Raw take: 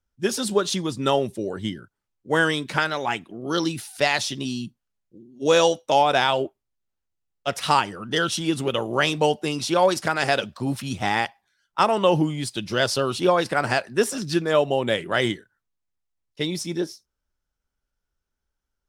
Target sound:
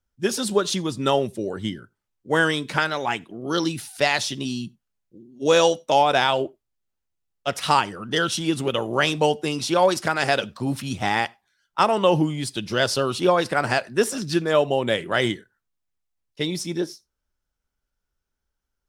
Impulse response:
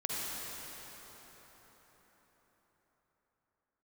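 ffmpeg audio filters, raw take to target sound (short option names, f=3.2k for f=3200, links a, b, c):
-filter_complex "[0:a]asplit=2[a][b];[1:a]atrim=start_sample=2205,atrim=end_sample=4410[c];[b][c]afir=irnorm=-1:irlink=0,volume=-23.5dB[d];[a][d]amix=inputs=2:normalize=0"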